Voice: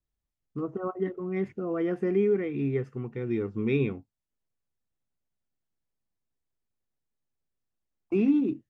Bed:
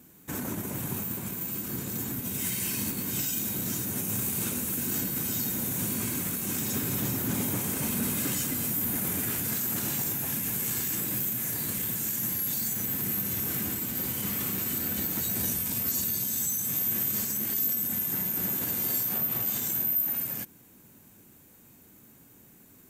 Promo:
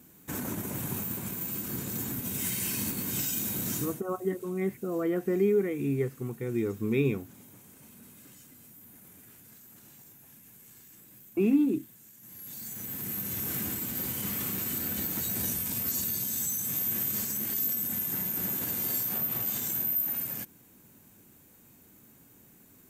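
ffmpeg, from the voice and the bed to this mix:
ffmpeg -i stem1.wav -i stem2.wav -filter_complex "[0:a]adelay=3250,volume=-0.5dB[link_01];[1:a]volume=20.5dB,afade=type=out:start_time=3.77:duration=0.24:silence=0.0749894,afade=type=in:start_time=12.21:duration=1.34:silence=0.0841395[link_02];[link_01][link_02]amix=inputs=2:normalize=0" out.wav

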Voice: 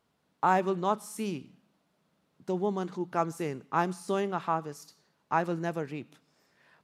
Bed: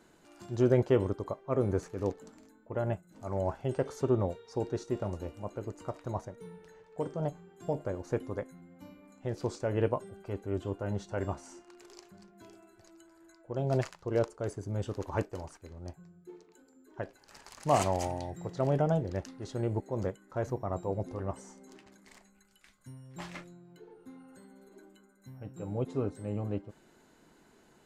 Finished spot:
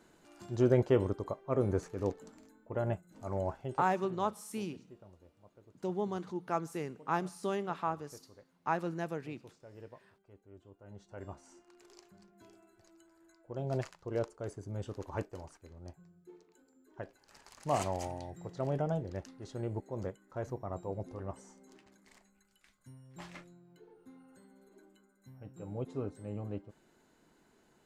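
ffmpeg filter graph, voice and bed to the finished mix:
ffmpeg -i stem1.wav -i stem2.wav -filter_complex "[0:a]adelay=3350,volume=-5dB[link_01];[1:a]volume=15dB,afade=type=out:start_time=3.3:duration=0.73:silence=0.0944061,afade=type=in:start_time=10.78:duration=1.14:silence=0.149624[link_02];[link_01][link_02]amix=inputs=2:normalize=0" out.wav

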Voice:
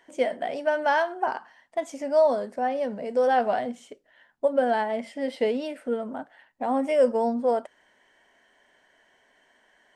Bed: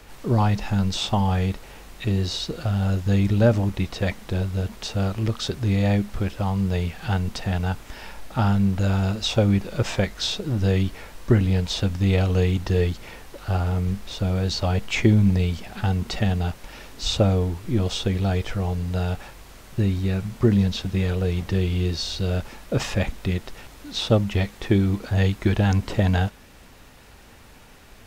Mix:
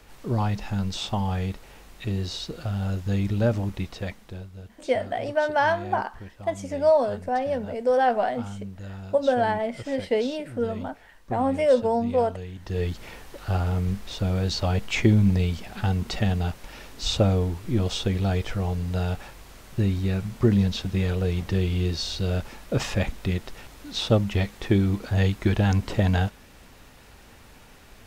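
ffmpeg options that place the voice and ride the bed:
ffmpeg -i stem1.wav -i stem2.wav -filter_complex "[0:a]adelay=4700,volume=1dB[link_01];[1:a]volume=10dB,afade=type=out:start_time=3.77:duration=0.73:silence=0.266073,afade=type=in:start_time=12.56:duration=0.47:silence=0.177828[link_02];[link_01][link_02]amix=inputs=2:normalize=0" out.wav

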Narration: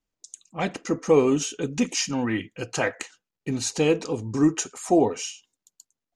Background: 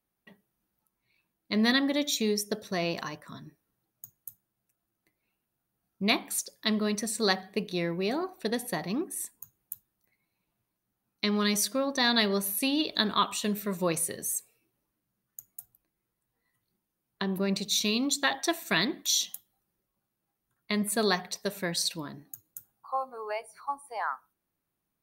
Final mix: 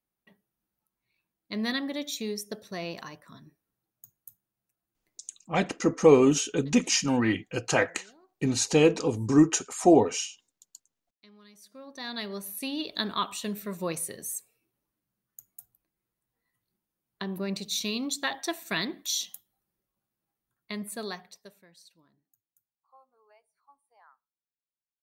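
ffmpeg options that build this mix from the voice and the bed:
ffmpeg -i stem1.wav -i stem2.wav -filter_complex "[0:a]adelay=4950,volume=1dB[link_01];[1:a]volume=19.5dB,afade=type=out:start_time=5.3:duration=0.27:silence=0.0707946,afade=type=in:start_time=11.6:duration=1.45:silence=0.0562341,afade=type=out:start_time=20.28:duration=1.37:silence=0.0668344[link_02];[link_01][link_02]amix=inputs=2:normalize=0" out.wav

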